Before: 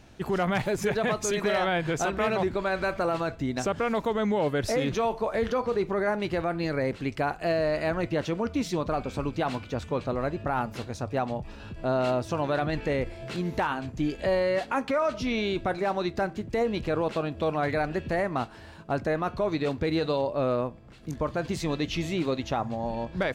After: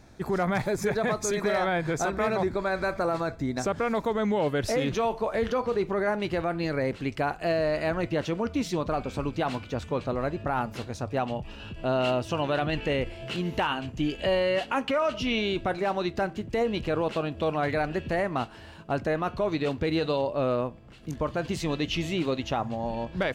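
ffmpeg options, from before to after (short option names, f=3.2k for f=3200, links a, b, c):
-af "asetnsamples=n=441:p=0,asendcmd='3.64 equalizer g -7;4.25 equalizer g 2;11.19 equalizer g 12.5;15.38 equalizer g 6',equalizer=f=2.9k:t=o:w=0.24:g=-14"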